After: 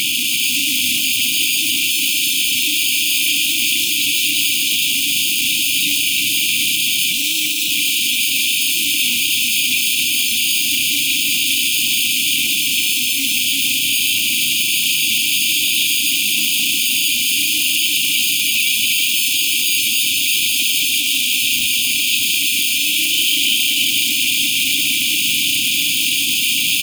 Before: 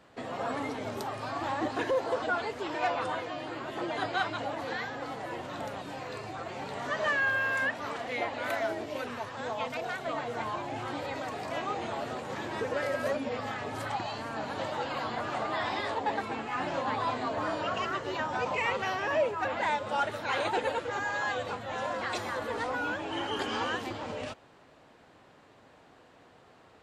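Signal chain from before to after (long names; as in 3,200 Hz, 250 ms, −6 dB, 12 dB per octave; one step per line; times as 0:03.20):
sign of each sample alone
downsampling to 8,000 Hz
in parallel at −5.5 dB: decimation without filtering 23×
on the sum: linear-phase brick-wall band-stop 330–2,300 Hz
first difference
hum removal 65.99 Hz, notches 14
on a send: repeating echo 341 ms, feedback 41%, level −5 dB
on the sum: boost into a limiter +33.5 dB
highs frequency-modulated by the lows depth 0.36 ms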